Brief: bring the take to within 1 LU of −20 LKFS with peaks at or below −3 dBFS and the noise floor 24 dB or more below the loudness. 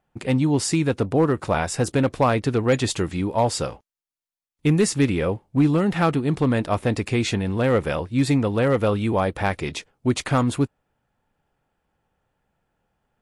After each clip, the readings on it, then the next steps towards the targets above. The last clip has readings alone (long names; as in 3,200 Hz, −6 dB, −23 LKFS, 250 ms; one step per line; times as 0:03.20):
share of clipped samples 0.3%; peaks flattened at −10.5 dBFS; integrated loudness −22.0 LKFS; sample peak −10.5 dBFS; target loudness −20.0 LKFS
→ clipped peaks rebuilt −10.5 dBFS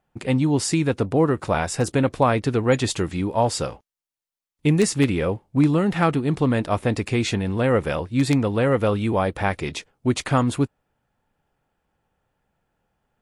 share of clipped samples 0.0%; integrated loudness −22.0 LKFS; sample peak −2.5 dBFS; target loudness −20.0 LKFS
→ level +2 dB
brickwall limiter −3 dBFS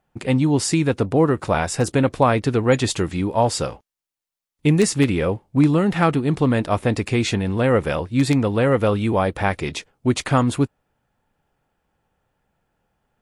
integrated loudness −20.0 LKFS; sample peak −3.0 dBFS; background noise floor −88 dBFS